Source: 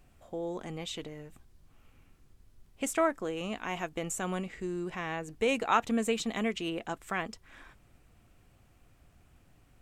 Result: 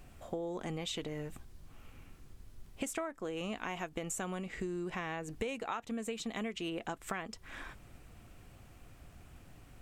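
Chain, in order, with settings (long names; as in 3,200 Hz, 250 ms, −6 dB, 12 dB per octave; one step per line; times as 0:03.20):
downward compressor 16 to 1, threshold −41 dBFS, peak gain reduction 21.5 dB
level +6.5 dB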